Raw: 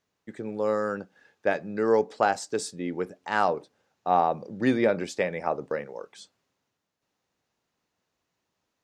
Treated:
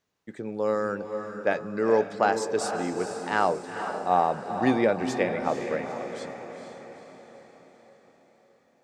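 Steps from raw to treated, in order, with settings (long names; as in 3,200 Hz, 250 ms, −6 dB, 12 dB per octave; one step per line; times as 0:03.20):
feedback delay with all-pass diffusion 463 ms, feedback 53%, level −7.5 dB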